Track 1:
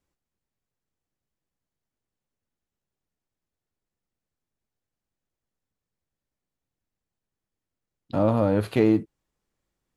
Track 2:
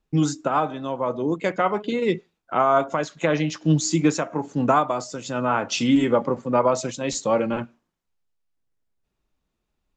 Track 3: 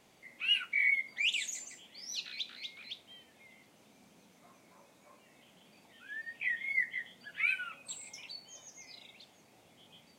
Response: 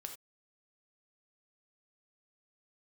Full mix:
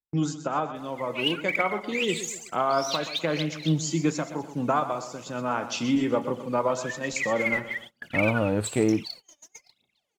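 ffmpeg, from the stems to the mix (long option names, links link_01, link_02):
-filter_complex "[0:a]volume=-3dB[link_01];[1:a]volume=-7dB,asplit=3[link_02][link_03][link_04];[link_03]volume=-10.5dB[link_05];[link_04]volume=-10.5dB[link_06];[2:a]acompressor=threshold=-34dB:ratio=6,aphaser=in_gain=1:out_gain=1:delay=3.6:decay=0.79:speed=1.1:type=triangular,adelay=750,volume=3dB,asplit=2[link_07][link_08];[link_08]volume=-15.5dB[link_09];[3:a]atrim=start_sample=2205[link_10];[link_05][link_09]amix=inputs=2:normalize=0[link_11];[link_11][link_10]afir=irnorm=-1:irlink=0[link_12];[link_06]aecho=0:1:125|250|375|500|625|750:1|0.41|0.168|0.0689|0.0283|0.0116[link_13];[link_01][link_02][link_07][link_12][link_13]amix=inputs=5:normalize=0,agate=range=-25dB:threshold=-41dB:ratio=16:detection=peak,aeval=exprs='0.335*(cos(1*acos(clip(val(0)/0.335,-1,1)))-cos(1*PI/2))+0.00266*(cos(7*acos(clip(val(0)/0.335,-1,1)))-cos(7*PI/2))':channel_layout=same"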